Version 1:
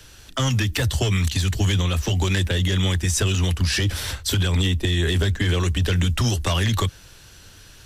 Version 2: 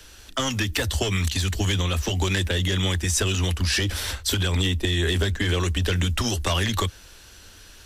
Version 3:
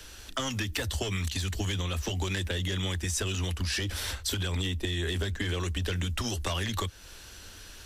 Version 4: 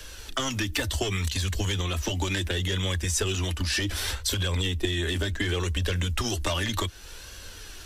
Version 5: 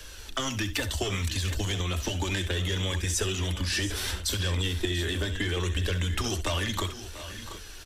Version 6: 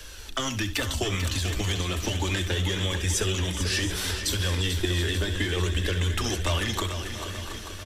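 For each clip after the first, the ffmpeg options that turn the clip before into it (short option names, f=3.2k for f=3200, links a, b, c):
-af "equalizer=f=130:w=2.7:g=-14"
-af "acompressor=threshold=-34dB:ratio=2"
-af "flanger=delay=1.8:depth=1.6:regen=53:speed=0.68:shape=sinusoidal,volume=8dB"
-af "aecho=1:1:67|690|728:0.237|0.178|0.2,volume=-2dB"
-af "aecho=1:1:442|884|1326|1768|2210|2652|3094:0.355|0.206|0.119|0.0692|0.0402|0.0233|0.0135,volume=1.5dB"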